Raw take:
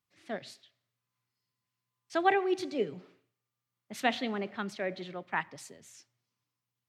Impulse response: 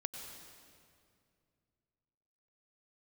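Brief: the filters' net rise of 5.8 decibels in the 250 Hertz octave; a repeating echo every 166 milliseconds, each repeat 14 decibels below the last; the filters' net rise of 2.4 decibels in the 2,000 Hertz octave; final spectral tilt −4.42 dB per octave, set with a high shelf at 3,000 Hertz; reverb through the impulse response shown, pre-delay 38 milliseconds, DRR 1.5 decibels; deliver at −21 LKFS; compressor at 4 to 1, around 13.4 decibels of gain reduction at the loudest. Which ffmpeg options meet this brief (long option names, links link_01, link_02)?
-filter_complex "[0:a]equalizer=frequency=250:width_type=o:gain=8,equalizer=frequency=2000:width_type=o:gain=5.5,highshelf=frequency=3000:gain=-8.5,acompressor=threshold=-36dB:ratio=4,aecho=1:1:166|332:0.2|0.0399,asplit=2[link_01][link_02];[1:a]atrim=start_sample=2205,adelay=38[link_03];[link_02][link_03]afir=irnorm=-1:irlink=0,volume=-0.5dB[link_04];[link_01][link_04]amix=inputs=2:normalize=0,volume=17dB"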